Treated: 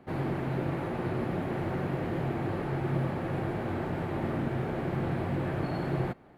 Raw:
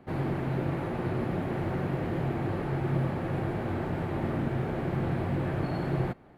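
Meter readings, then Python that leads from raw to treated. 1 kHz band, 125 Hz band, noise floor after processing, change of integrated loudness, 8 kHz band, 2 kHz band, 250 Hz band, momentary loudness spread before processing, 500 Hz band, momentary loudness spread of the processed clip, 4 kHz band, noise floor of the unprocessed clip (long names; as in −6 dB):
0.0 dB, −2.0 dB, −41 dBFS, −1.0 dB, can't be measured, 0.0 dB, −1.0 dB, 2 LU, −0.5 dB, 2 LU, 0.0 dB, −40 dBFS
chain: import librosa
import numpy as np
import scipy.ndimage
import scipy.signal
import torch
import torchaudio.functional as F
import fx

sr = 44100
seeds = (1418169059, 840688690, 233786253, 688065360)

y = fx.low_shelf(x, sr, hz=130.0, db=-4.0)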